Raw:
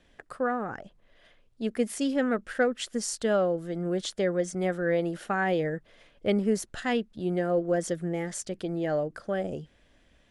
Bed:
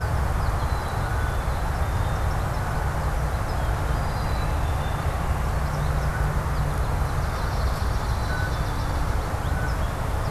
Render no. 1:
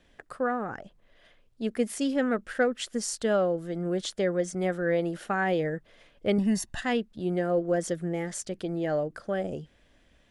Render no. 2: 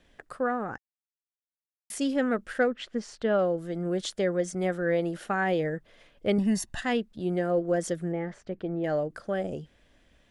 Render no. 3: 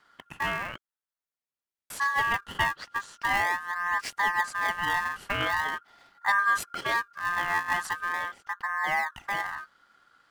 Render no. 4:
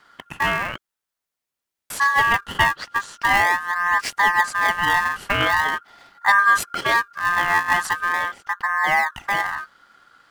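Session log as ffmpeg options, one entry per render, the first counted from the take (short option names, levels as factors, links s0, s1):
-filter_complex "[0:a]asettb=1/sr,asplit=3[s0][s1][s2];[s0]atrim=end=6.384[s3];[s1]atrim=start=6.38:end=6.81,asetpts=PTS-STARTPTS,afade=t=in:d=0.004:c=qsin,afade=t=out:st=0.426:d=0.004:c=qsin,aecho=1:1:1.1:0.88,atrim=end_sample=18963[s4];[s2]atrim=start=6.806[s5];[s3][s4]acrossfade=d=0.004:c1=hsin:c2=qsin[s6];[s6][s5]acrossfade=d=0.004:c1=qsin:c2=hsin"
-filter_complex "[0:a]asettb=1/sr,asplit=3[s0][s1][s2];[s0]atrim=end=2.714[s3];[s1]atrim=start=2.71:end=3.39,asetpts=PTS-STARTPTS,afade=t=in:d=0.004:c=qsin,afade=t=out:st=0.676:d=0.004:c=qsin,lowpass=3000[s4];[s2]atrim=start=3.386[s5];[s3][s4]acrossfade=d=0.004:c1=hsin:c2=qsin[s6];[s6][s5]acrossfade=d=0.004:c1=qsin:c2=hsin,asettb=1/sr,asplit=3[s7][s8][s9];[s7]atrim=end=8.124[s10];[s8]atrim=start=8.12:end=8.84,asetpts=PTS-STARTPTS,afade=t=in:d=0.004:c=qsin,afade=t=out:st=0.716:d=0.004:c=qsin,lowpass=1900[s11];[s9]atrim=start=8.836[s12];[s10][s11]acrossfade=d=0.004:c1=hsin:c2=qsin[s13];[s13][s12]acrossfade=d=0.004:c1=qsin:c2=hsin,asplit=3[s14][s15][s16];[s14]atrim=end=0.78,asetpts=PTS-STARTPTS,afade=t=out:st=0.776:d=0.004:c=hsin[s17];[s15]atrim=start=0.78:end=1.9,asetpts=PTS-STARTPTS,volume=0[s18];[s16]atrim=start=1.9,asetpts=PTS-STARTPTS,afade=t=in:d=0.004:c=hsin[s19];[s17][s18][s19]concat=n=3:v=0:a=1"
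-filter_complex "[0:a]asplit=2[s0][s1];[s1]acrusher=samples=31:mix=1:aa=0.000001:lfo=1:lforange=49.6:lforate=0.43,volume=0.501[s2];[s0][s2]amix=inputs=2:normalize=0,aeval=exprs='val(0)*sin(2*PI*1400*n/s)':c=same"
-af "volume=2.66"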